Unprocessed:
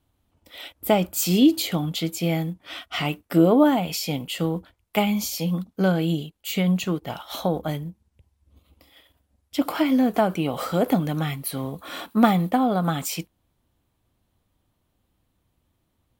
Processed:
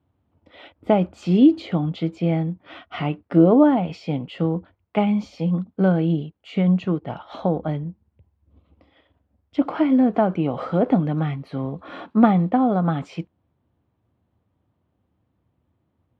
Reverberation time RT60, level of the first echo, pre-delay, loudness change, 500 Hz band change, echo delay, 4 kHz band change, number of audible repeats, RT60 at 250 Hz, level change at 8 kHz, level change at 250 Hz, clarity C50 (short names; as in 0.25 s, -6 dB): none, none, none, +2.0 dB, +2.0 dB, none, -10.0 dB, none, none, under -25 dB, +3.0 dB, none